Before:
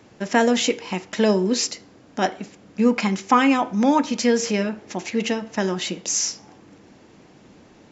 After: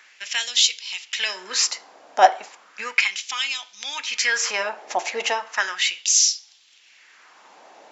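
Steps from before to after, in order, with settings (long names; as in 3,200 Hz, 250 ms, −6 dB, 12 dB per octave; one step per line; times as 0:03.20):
auto-filter high-pass sine 0.35 Hz 690–3,900 Hz
dynamic equaliser 210 Hz, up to −6 dB, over −50 dBFS, Q 1.3
level +3.5 dB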